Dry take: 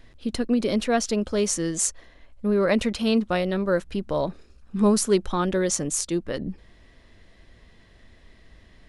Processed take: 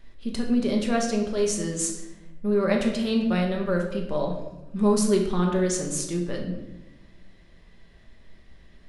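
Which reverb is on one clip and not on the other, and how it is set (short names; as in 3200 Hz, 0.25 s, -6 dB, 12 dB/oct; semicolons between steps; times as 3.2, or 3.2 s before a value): shoebox room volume 460 m³, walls mixed, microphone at 1.2 m; gain -5 dB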